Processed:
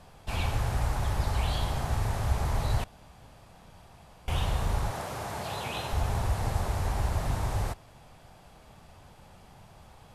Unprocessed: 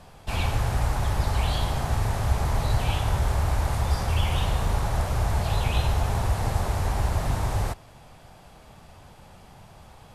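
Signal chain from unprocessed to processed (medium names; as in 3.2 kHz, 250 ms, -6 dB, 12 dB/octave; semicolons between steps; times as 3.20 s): 2.84–4.28 s: room tone; 4.91–5.93 s: high-pass 190 Hz 12 dB/octave; trim -4 dB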